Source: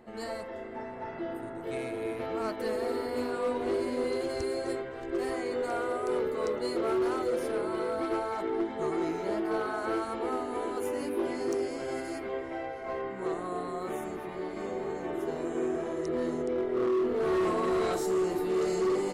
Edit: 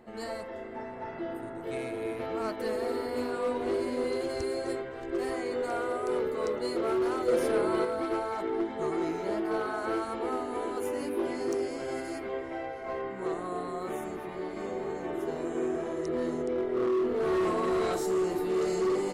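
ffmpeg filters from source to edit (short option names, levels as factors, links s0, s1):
-filter_complex "[0:a]asplit=3[s0][s1][s2];[s0]atrim=end=7.282[s3];[s1]atrim=start=7.278:end=7.852,asetpts=PTS-STARTPTS,volume=1.68[s4];[s2]atrim=start=7.848[s5];[s3][s4]acrossfade=d=0.004:c1=hsin:c2=hsin[s6];[s6][s5]acrossfade=d=0.004:c1=hsin:c2=hsin"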